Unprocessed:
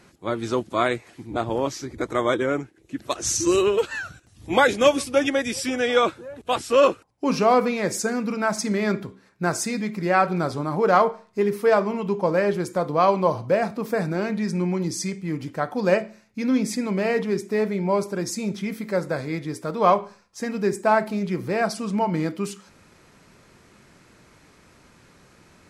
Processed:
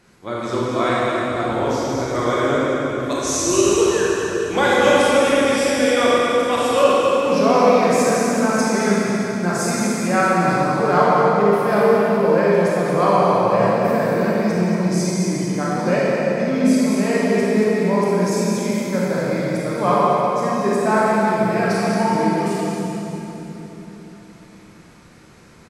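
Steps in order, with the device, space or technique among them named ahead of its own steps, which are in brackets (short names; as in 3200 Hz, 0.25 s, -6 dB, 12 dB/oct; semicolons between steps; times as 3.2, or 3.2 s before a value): cave (echo 0.228 s -8 dB; reverb RT60 3.8 s, pre-delay 24 ms, DRR -7 dB); 6.39–6.84 high shelf 11000 Hz +9 dB; gain -3 dB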